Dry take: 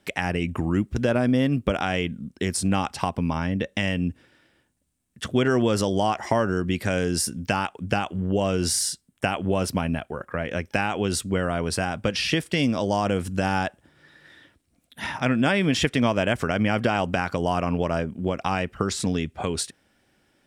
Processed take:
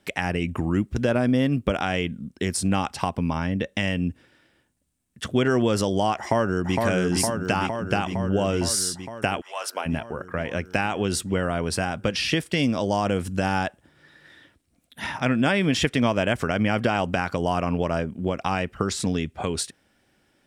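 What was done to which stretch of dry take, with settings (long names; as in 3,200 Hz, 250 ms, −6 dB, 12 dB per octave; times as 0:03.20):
0:06.18–0:06.77: delay throw 460 ms, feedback 75%, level −3 dB
0:09.40–0:09.85: high-pass filter 1,200 Hz → 380 Hz 24 dB per octave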